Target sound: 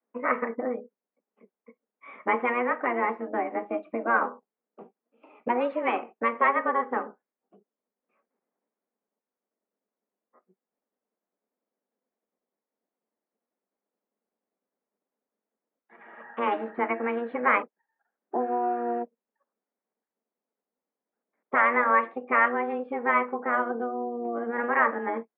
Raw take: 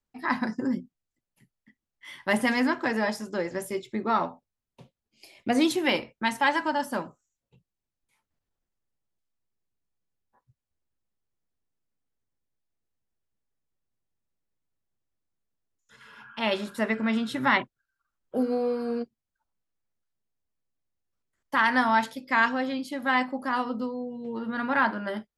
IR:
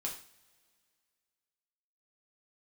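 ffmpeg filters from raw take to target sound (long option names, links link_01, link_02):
-filter_complex "[0:a]tiltshelf=frequency=1500:gain=6.5,highpass=frequency=170:width_type=q:width=0.5412,highpass=frequency=170:width_type=q:width=1.307,lowpass=frequency=2200:width_type=q:width=0.5176,lowpass=frequency=2200:width_type=q:width=0.7071,lowpass=frequency=2200:width_type=q:width=1.932,afreqshift=240,asplit=2[link_01][link_02];[link_02]asetrate=22050,aresample=44100,atempo=2,volume=-2dB[link_03];[link_01][link_03]amix=inputs=2:normalize=0,acrossover=split=870[link_04][link_05];[link_04]acompressor=threshold=-30dB:ratio=6[link_06];[link_06][link_05]amix=inputs=2:normalize=0"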